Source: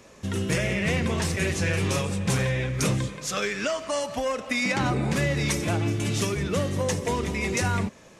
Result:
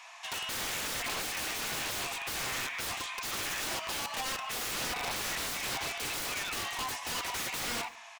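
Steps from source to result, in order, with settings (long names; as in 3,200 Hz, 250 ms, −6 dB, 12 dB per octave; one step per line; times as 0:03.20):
Chebyshev high-pass with heavy ripple 670 Hz, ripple 6 dB
in parallel at −2 dB: downward compressor 10 to 1, threshold −40 dBFS, peak gain reduction 15.5 dB
on the sum: wrap-around overflow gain 31.5 dB
high-shelf EQ 6,800 Hz −7.5 dB
single-tap delay 140 ms −24 dB
on a send at −14.5 dB: convolution reverb RT60 0.45 s, pre-delay 3 ms
on the sum: level +4 dB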